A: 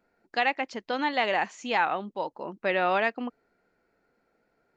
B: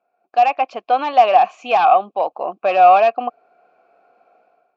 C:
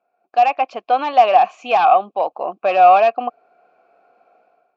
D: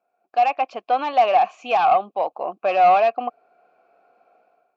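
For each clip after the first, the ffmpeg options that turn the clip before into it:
-filter_complex "[0:a]aeval=exprs='0.299*sin(PI/2*2.24*val(0)/0.299)':c=same,asplit=3[a][b][c];[a]bandpass=f=730:t=q:w=8,volume=0dB[d];[b]bandpass=f=1.09k:t=q:w=8,volume=-6dB[e];[c]bandpass=f=2.44k:t=q:w=8,volume=-9dB[f];[d][e][f]amix=inputs=3:normalize=0,dynaudnorm=f=110:g=7:m=15.5dB"
-af anull
-af "asoftclip=type=tanh:threshold=-4dB,volume=-3dB"

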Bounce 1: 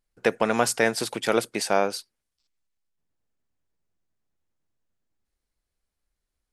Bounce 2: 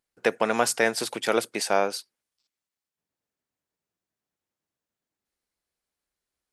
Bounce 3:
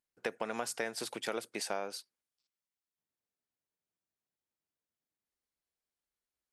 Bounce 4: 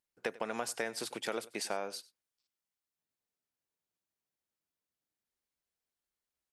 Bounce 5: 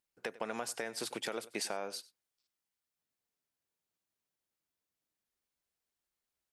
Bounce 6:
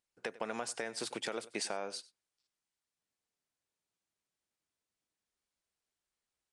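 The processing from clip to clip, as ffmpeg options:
-af "highpass=f=250:p=1"
-af "acompressor=threshold=-23dB:ratio=6,volume=-8.5dB"
-af "aecho=1:1:95:0.1"
-af "alimiter=limit=-24dB:level=0:latency=1:release=270,volume=1dB"
-af "aresample=22050,aresample=44100"

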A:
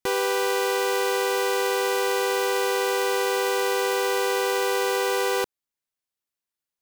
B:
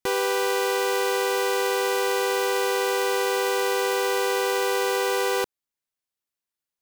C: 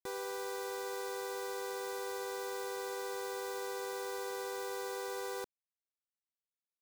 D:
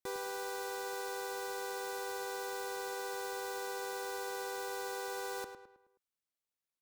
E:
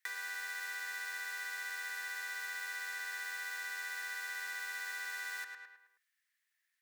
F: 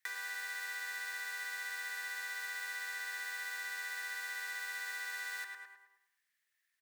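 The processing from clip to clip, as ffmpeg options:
-af anull
-af "equalizer=f=2.9k:w=2.6:g=-12.5,alimiter=level_in=0.5dB:limit=-24dB:level=0:latency=1:release=225,volume=-0.5dB,acrusher=bits=6:mix=0:aa=0.000001,volume=-8dB"
-filter_complex "[0:a]asplit=2[a][b];[b]adelay=106,lowpass=f=3.3k:p=1,volume=-7.5dB,asplit=2[c][d];[d]adelay=106,lowpass=f=3.3k:p=1,volume=0.45,asplit=2[e][f];[f]adelay=106,lowpass=f=3.3k:p=1,volume=0.45,asplit=2[g][h];[h]adelay=106,lowpass=f=3.3k:p=1,volume=0.45,asplit=2[i][j];[j]adelay=106,lowpass=f=3.3k:p=1,volume=0.45[k];[a][c][e][g][i][k]amix=inputs=6:normalize=0,volume=1dB"
-af "acompressor=threshold=-47dB:ratio=4,highpass=f=1.8k:t=q:w=9.6,volume=6dB"
-af "aecho=1:1:101|202|303|404:0.224|0.101|0.0453|0.0204"

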